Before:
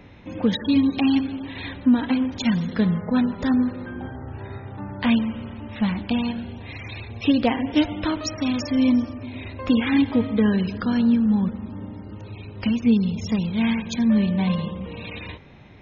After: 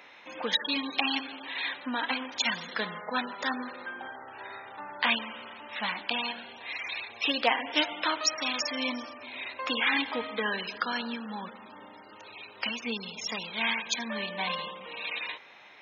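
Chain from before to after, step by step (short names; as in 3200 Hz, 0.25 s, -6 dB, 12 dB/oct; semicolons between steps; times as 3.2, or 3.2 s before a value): HPF 900 Hz 12 dB/oct; gain +3.5 dB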